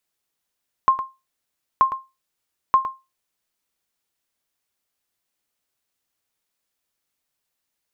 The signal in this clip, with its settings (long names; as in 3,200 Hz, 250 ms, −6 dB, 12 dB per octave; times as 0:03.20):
ping with an echo 1,060 Hz, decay 0.24 s, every 0.93 s, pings 3, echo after 0.11 s, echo −11 dB −7 dBFS